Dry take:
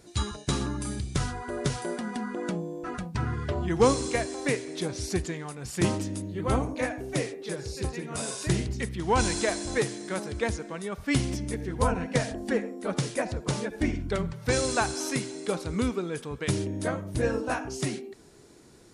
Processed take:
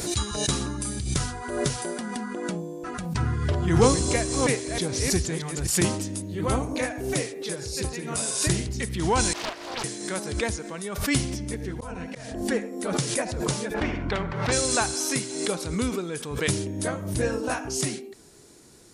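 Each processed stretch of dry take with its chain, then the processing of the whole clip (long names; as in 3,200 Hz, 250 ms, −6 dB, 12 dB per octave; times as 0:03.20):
0:03.20–0:05.67: delay that plays each chunk backwards 317 ms, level −5 dB + low-shelf EQ 150 Hz +7 dB
0:09.33–0:09.84: high-pass filter 700 Hz + high-frequency loss of the air 380 metres + highs frequency-modulated by the lows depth 0.81 ms
0:11.23–0:12.42: high-shelf EQ 7,100 Hz −7 dB + volume swells 354 ms + multiband upward and downward compressor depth 40%
0:13.74–0:14.52: low-pass filter 1,300 Hz + every bin compressed towards the loudest bin 2 to 1
whole clip: high-shelf EQ 4,800 Hz +9.5 dB; background raised ahead of every attack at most 55 dB per second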